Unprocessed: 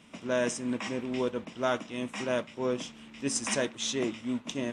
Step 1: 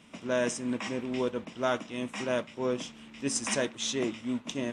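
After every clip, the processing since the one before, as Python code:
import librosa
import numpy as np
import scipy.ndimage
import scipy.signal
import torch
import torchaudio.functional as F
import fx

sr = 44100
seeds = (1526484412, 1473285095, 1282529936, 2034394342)

y = x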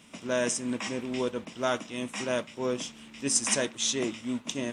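y = fx.high_shelf(x, sr, hz=5000.0, db=9.5)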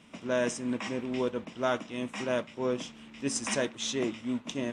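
y = fx.lowpass(x, sr, hz=2800.0, slope=6)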